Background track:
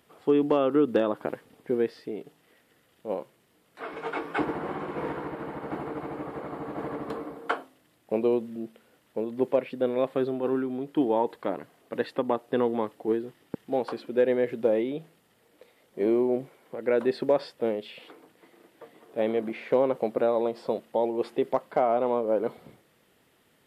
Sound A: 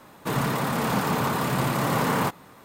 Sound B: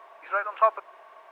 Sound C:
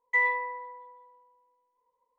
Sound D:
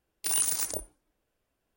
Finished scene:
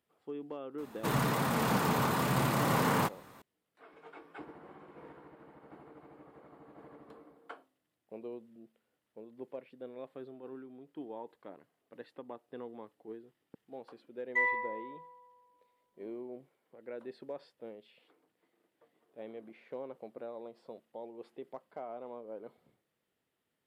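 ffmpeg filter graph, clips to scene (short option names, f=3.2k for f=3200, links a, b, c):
-filter_complex "[0:a]volume=-19.5dB[a];[1:a]atrim=end=2.64,asetpts=PTS-STARTPTS,volume=-5dB,afade=t=in:d=0.004:c=hsin,afade=t=out:st=2.636:d=0.004:c=hsin,adelay=780[b];[3:a]atrim=end=2.18,asetpts=PTS-STARTPTS,volume=-5dB,afade=t=in:d=0.004:c=hsin,afade=t=out:st=2.176:d=0.004:c=hsin,adelay=14220[c];[a][b][c]amix=inputs=3:normalize=0"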